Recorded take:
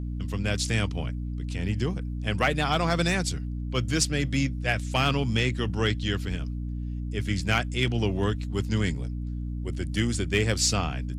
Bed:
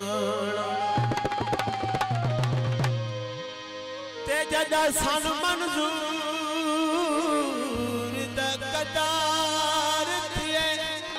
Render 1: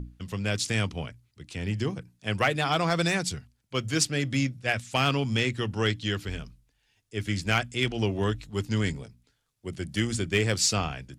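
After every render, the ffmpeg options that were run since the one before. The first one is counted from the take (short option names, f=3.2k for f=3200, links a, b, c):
-af "bandreject=f=60:t=h:w=6,bandreject=f=120:t=h:w=6,bandreject=f=180:t=h:w=6,bandreject=f=240:t=h:w=6,bandreject=f=300:t=h:w=6"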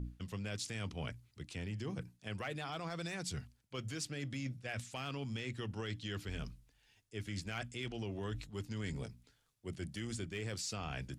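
-af "alimiter=limit=-22dB:level=0:latency=1:release=81,areverse,acompressor=threshold=-39dB:ratio=5,areverse"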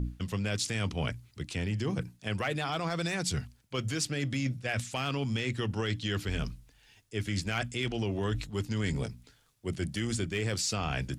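-af "volume=9.5dB"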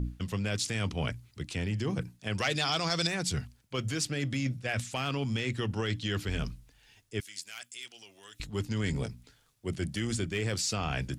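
-filter_complex "[0:a]asettb=1/sr,asplit=3[a][b][c];[a]atrim=end=2.384[d];[b]atrim=start=2.38:end=3.07,asetpts=PTS-STARTPTS,afade=t=in:d=0.004:c=qsin,afade=t=out:st=0.686:d=0.004:c=qsin,equalizer=f=5.3k:w=0.89:g=15[e];[c]atrim=start=3.066[f];[d][e]acrossfade=d=0.004:c1=hsin:c2=qsin[g];[g][f]acrossfade=d=0.004:c1=qsin:c2=hsin,asettb=1/sr,asplit=3[h][i][j];[h]atrim=end=7.204[k];[i]atrim=start=7.2:end=8.4,asetpts=PTS-STARTPTS,afade=t=in:d=0.004:c=qsin,afade=t=out:st=1.196:d=0.004:c=qsin,aderivative[l];[j]atrim=start=8.396[m];[k][l]acrossfade=d=0.004:c1=hsin:c2=qsin[n];[n][m]acrossfade=d=0.004:c1=qsin:c2=hsin"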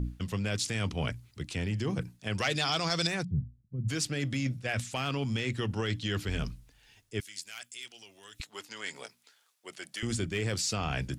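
-filter_complex "[0:a]asplit=3[a][b][c];[a]afade=t=out:st=3.23:d=0.02[d];[b]lowpass=f=170:t=q:w=1.6,afade=t=in:st=3.23:d=0.02,afade=t=out:st=3.88:d=0.02[e];[c]afade=t=in:st=3.88:d=0.02[f];[d][e][f]amix=inputs=3:normalize=0,asettb=1/sr,asplit=3[g][h][i];[g]atrim=end=8.414[j];[h]atrim=start=8.41:end=10.03,asetpts=PTS-STARTPTS,afade=t=in:d=0.004:c=qsin,afade=t=out:st=1.616:d=0.004:c=qsin,highpass=730[k];[i]atrim=start=10.026[l];[j][k]acrossfade=d=0.004:c1=hsin:c2=qsin[m];[m][l]acrossfade=d=0.004:c1=qsin:c2=hsin"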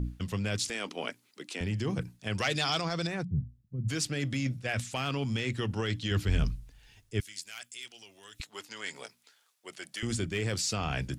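-filter_complex "[0:a]asettb=1/sr,asplit=3[a][b][c];[a]atrim=end=0.704[d];[b]atrim=start=0.7:end=1.61,asetpts=PTS-STARTPTS,afade=t=in:d=0.004:c=qsin,afade=t=out:st=0.906:d=0.004:c=qsin,highpass=f=260:w=0.5412,highpass=f=260:w=1.3066[e];[c]atrim=start=1.606[f];[d][e]acrossfade=d=0.004:c1=hsin:c2=qsin[g];[g][f]acrossfade=d=0.004:c1=qsin:c2=hsin,asettb=1/sr,asplit=3[h][i][j];[h]atrim=end=2.814[k];[i]atrim=start=2.81:end=3.41,asetpts=PTS-STARTPTS,afade=t=in:d=0.004:c=qsin,afade=t=out:st=0.596:d=0.004:c=qsin,highshelf=f=2.5k:g=-11.5[l];[j]atrim=start=3.406[m];[k][l]acrossfade=d=0.004:c1=hsin:c2=qsin[n];[n][m]acrossfade=d=0.004:c1=qsin:c2=hsin,asettb=1/sr,asplit=3[o][p][q];[o]atrim=end=6.114[r];[p]atrim=start=6.11:end=7.33,asetpts=PTS-STARTPTS,afade=t=in:d=0.004:c=qsin,afade=t=out:st=1.216:d=0.004:c=qsin,lowshelf=f=110:g=11[s];[q]atrim=start=7.326[t];[r][s]acrossfade=d=0.004:c1=hsin:c2=qsin[u];[u][t]acrossfade=d=0.004:c1=qsin:c2=hsin"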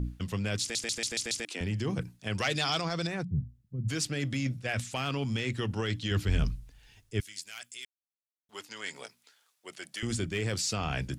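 -filter_complex "[0:a]asplit=9[a][b][c][d][e][f][g][h][i];[a]atrim=end=0.752[j];[b]atrim=start=0.608:end=0.752[k];[c]atrim=start=0.608:end=0.752[l];[d]atrim=start=0.608:end=0.752[m];[e]atrim=start=0.608:end=0.752[n];[f]atrim=start=0.608:end=0.752[o];[g]atrim=start=1.448:end=7.85,asetpts=PTS-STARTPTS,afade=t=out:st=6.398:d=0.004:c=hsin[p];[h]atrim=start=7.85:end=8.49,asetpts=PTS-STARTPTS,volume=0[q];[i]atrim=start=8.49,asetpts=PTS-STARTPTS,afade=t=in:d=0.004:c=hsin[r];[j][k]acrossfade=d=0.004:c1=hsin:c2=hsin[s];[s][l]acrossfade=d=0.004:c1=hsin:c2=hsin[t];[t][m]acrossfade=d=0.004:c1=hsin:c2=hsin[u];[u][n]acrossfade=d=0.004:c1=hsin:c2=hsin[v];[v][o]acrossfade=d=0.004:c1=hsin:c2=hsin[w];[p][q][r]concat=n=3:v=0:a=1[x];[w][x]acrossfade=d=0.004:c1=hsin:c2=hsin"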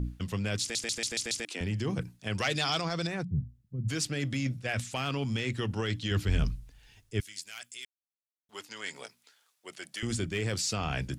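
-af anull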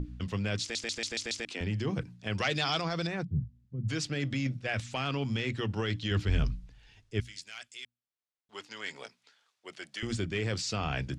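-af "lowpass=5.4k,bandreject=f=60:t=h:w=6,bandreject=f=120:t=h:w=6,bandreject=f=180:t=h:w=6,bandreject=f=240:t=h:w=6"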